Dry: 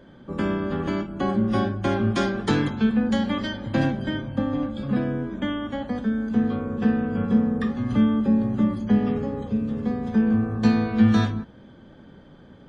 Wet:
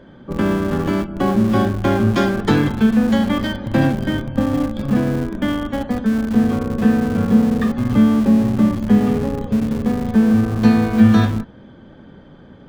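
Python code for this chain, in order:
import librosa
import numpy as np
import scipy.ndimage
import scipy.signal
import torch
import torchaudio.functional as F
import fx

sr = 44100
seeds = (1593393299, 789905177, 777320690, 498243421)

p1 = fx.high_shelf(x, sr, hz=5200.0, db=-7.5)
p2 = fx.schmitt(p1, sr, flips_db=-25.0)
p3 = p1 + (p2 * 10.0 ** (-12.0 / 20.0))
y = p3 * 10.0 ** (5.5 / 20.0)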